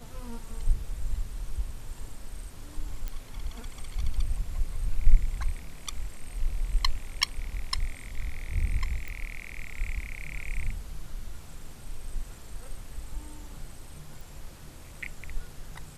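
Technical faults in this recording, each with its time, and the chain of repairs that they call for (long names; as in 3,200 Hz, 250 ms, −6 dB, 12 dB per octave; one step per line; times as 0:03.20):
0:03.08: click −21 dBFS
0:09.08: click
0:14.21: click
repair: click removal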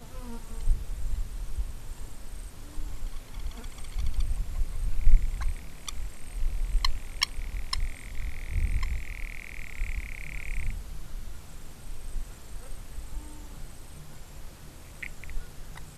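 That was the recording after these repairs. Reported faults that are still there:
none of them is left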